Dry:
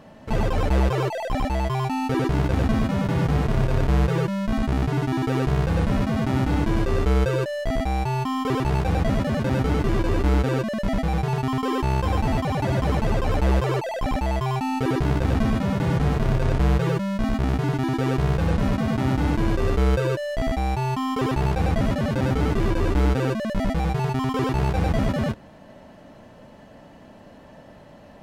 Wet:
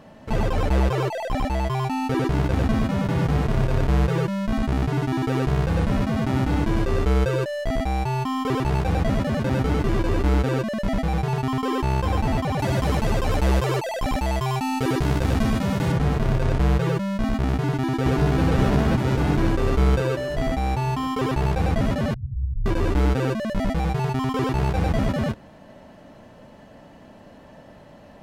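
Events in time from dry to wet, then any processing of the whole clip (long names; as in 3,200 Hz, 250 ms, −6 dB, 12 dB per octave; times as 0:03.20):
0:12.59–0:15.92: high-shelf EQ 3,700 Hz +7.5 dB
0:17.52–0:18.42: delay throw 530 ms, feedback 65%, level −0.5 dB
0:22.14–0:22.66: inverse Chebyshev low-pass filter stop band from 590 Hz, stop band 80 dB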